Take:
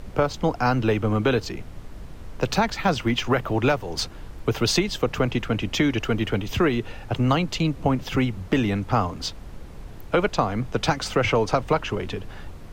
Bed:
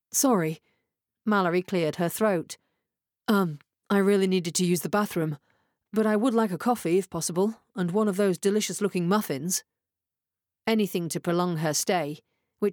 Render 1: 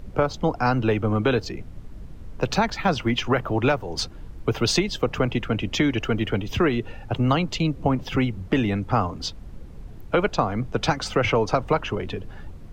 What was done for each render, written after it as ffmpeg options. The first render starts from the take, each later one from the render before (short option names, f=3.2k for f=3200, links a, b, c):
-af "afftdn=nr=8:nf=-40"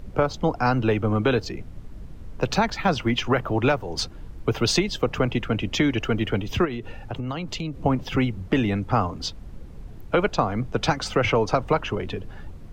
-filter_complex "[0:a]asplit=3[a][b][c];[a]afade=t=out:st=6.64:d=0.02[d];[b]acompressor=threshold=-26dB:ratio=6:attack=3.2:release=140:knee=1:detection=peak,afade=t=in:st=6.64:d=0.02,afade=t=out:st=7.76:d=0.02[e];[c]afade=t=in:st=7.76:d=0.02[f];[d][e][f]amix=inputs=3:normalize=0"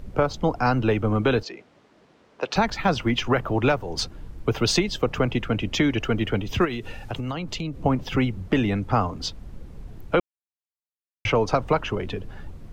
-filter_complex "[0:a]asettb=1/sr,asplit=3[a][b][c];[a]atrim=end=1.434[d];[b]atrim=start=1.43:end=2.56,asetpts=PTS-STARTPTS,afade=t=in:d=0.004:c=qsin,afade=t=out:st=1.126:d=0.004:c=qsin,highpass=430,lowpass=5.6k[e];[c]atrim=start=2.556[f];[d][e]acrossfade=d=0.004:c1=hsin:c2=qsin[g];[g][f]acrossfade=d=0.004:c1=qsin:c2=hsin,asettb=1/sr,asplit=3[h][i][j];[h]atrim=end=6.614[k];[i]atrim=start=6.61:end=7.31,asetpts=PTS-STARTPTS,afade=t=in:d=0.004:c=qsin,afade=t=out:st=0.696:d=0.004:c=qsin,highshelf=f=2.3k:g=9[l];[j]atrim=start=7.306[m];[k][l]acrossfade=d=0.004:c1=hsin:c2=qsin[n];[n][m]acrossfade=d=0.004:c1=qsin:c2=hsin,asplit=3[o][p][q];[o]atrim=end=10.2,asetpts=PTS-STARTPTS,afade=t=out:st=10.196:d=0.004:c=hsin[r];[p]atrim=start=10.2:end=11.25,asetpts=PTS-STARTPTS,volume=0[s];[q]atrim=start=11.25,asetpts=PTS-STARTPTS,afade=t=in:d=0.004:c=hsin[t];[r][s][t]concat=n=3:v=0:a=1"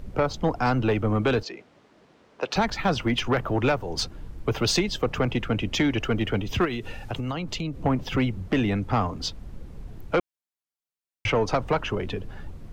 -af "asoftclip=type=tanh:threshold=-14dB"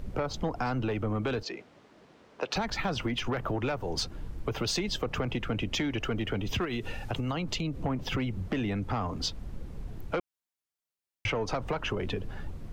-af "alimiter=limit=-19dB:level=0:latency=1:release=119,acompressor=threshold=-27dB:ratio=6"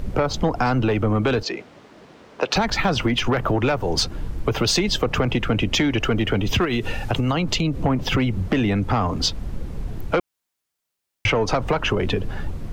-af "volume=10.5dB"